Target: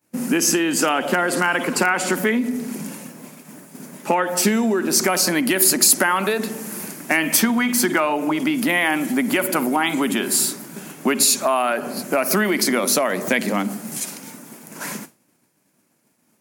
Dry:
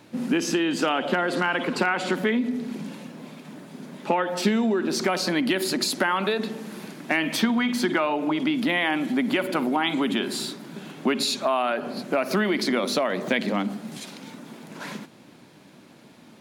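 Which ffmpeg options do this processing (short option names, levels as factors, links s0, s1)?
-af "equalizer=f=3700:w=1.6:g=-13.5,crystalizer=i=5:c=0,agate=range=0.0224:threshold=0.0178:ratio=3:detection=peak,volume=1.41"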